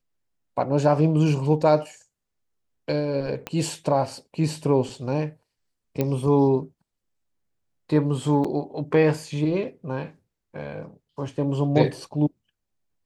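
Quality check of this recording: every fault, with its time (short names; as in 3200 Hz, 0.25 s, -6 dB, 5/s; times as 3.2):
3.47 pop -15 dBFS
6.01 pop -11 dBFS
8.44–8.45 gap 5.3 ms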